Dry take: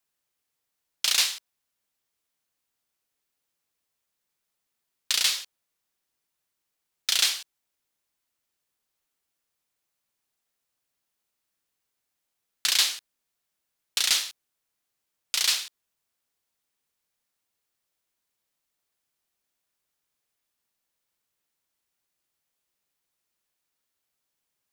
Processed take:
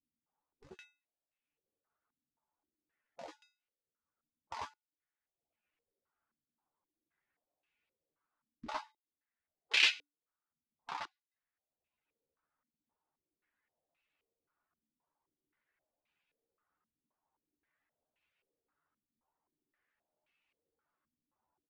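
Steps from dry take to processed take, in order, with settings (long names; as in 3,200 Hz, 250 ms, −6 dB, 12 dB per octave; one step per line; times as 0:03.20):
gliding playback speed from 168% → 60%
reverb reduction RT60 1 s
tuned comb filter 290 Hz, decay 0.31 s, harmonics odd, mix 60%
hard clipping −25 dBFS, distortion −13 dB
gate on every frequency bin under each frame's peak −25 dB strong
double-tracking delay 13 ms −5 dB
low-pass on a step sequencer 3.8 Hz 240–2,600 Hz
level +6 dB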